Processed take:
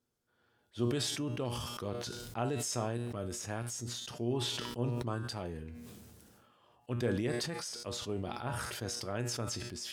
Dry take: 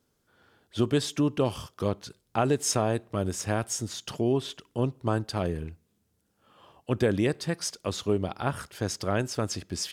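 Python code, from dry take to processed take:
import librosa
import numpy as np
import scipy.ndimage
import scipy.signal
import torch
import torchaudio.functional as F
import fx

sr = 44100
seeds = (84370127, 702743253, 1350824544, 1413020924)

y = fx.comb_fb(x, sr, f0_hz=120.0, decay_s=0.33, harmonics='all', damping=0.0, mix_pct=70)
y = fx.sustainer(y, sr, db_per_s=26.0)
y = F.gain(torch.from_numpy(y), -4.0).numpy()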